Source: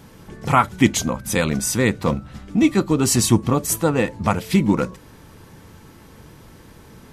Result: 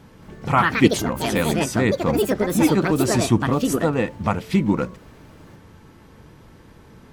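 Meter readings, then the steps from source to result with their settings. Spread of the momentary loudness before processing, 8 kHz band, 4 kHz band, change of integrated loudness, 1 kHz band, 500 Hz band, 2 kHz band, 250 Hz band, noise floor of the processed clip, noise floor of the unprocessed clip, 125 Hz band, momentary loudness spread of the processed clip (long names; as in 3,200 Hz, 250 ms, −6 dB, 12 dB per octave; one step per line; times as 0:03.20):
7 LU, −7.0 dB, −1.5 dB, −0.5 dB, −0.5 dB, +1.5 dB, +1.0 dB, −0.5 dB, −48 dBFS, −46 dBFS, −1.5 dB, 5 LU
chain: high-shelf EQ 5,500 Hz −10 dB
delay with pitch and tempo change per echo 226 ms, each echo +5 semitones, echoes 2
level −2 dB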